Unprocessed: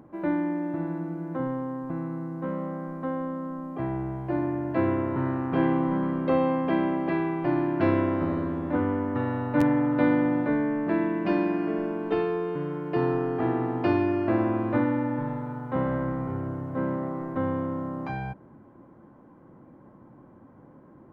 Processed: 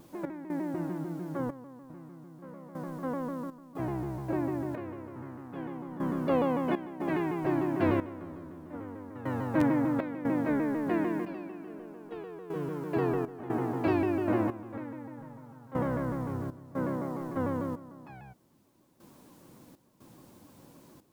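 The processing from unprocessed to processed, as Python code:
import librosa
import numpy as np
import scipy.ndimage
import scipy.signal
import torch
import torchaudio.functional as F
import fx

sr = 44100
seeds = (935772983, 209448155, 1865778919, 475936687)

y = fx.quant_dither(x, sr, seeds[0], bits=10, dither='triangular')
y = fx.step_gate(y, sr, bpm=60, pattern='x.xxxx.....xx', floor_db=-12.0, edge_ms=4.5)
y = fx.vibrato_shape(y, sr, shape='saw_down', rate_hz=6.7, depth_cents=160.0)
y = y * librosa.db_to_amplitude(-3.5)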